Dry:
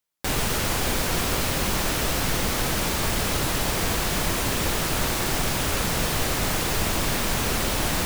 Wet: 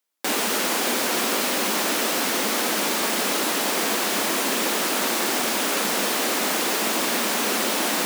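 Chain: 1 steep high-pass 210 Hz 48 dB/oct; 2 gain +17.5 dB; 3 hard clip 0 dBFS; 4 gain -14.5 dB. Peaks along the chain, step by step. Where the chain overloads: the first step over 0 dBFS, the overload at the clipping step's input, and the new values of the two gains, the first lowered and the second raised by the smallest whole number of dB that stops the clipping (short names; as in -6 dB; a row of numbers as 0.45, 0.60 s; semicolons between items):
-13.0, +4.5, 0.0, -14.5 dBFS; step 2, 4.5 dB; step 2 +12.5 dB, step 4 -9.5 dB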